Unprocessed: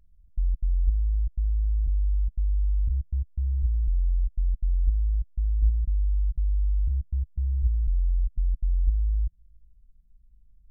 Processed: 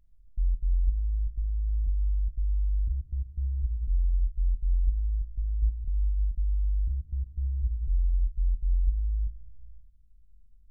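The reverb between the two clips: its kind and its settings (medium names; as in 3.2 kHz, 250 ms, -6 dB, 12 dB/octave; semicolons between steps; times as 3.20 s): algorithmic reverb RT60 1.7 s, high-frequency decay 0.8×, pre-delay 0 ms, DRR 5.5 dB; trim -4 dB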